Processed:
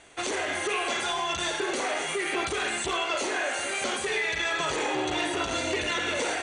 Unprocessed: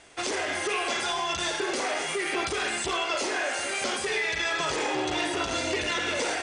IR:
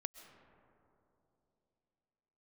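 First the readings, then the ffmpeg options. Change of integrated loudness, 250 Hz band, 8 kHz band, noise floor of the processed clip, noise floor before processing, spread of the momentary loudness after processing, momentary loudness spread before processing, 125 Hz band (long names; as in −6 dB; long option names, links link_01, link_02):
0.0 dB, 0.0 dB, −0.5 dB, −33 dBFS, −32 dBFS, 2 LU, 2 LU, 0.0 dB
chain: -af "bandreject=frequency=5100:width=5.1"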